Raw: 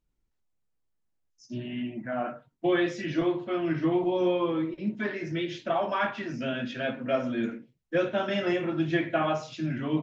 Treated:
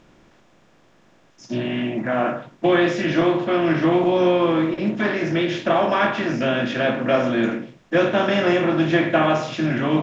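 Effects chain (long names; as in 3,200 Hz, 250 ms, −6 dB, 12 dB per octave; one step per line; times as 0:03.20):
compressor on every frequency bin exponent 0.6
level +5.5 dB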